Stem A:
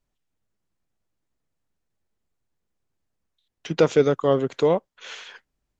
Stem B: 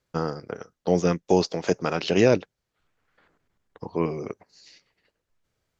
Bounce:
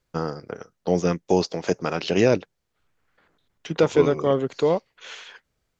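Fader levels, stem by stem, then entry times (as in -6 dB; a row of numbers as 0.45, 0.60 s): -1.0, 0.0 dB; 0.00, 0.00 s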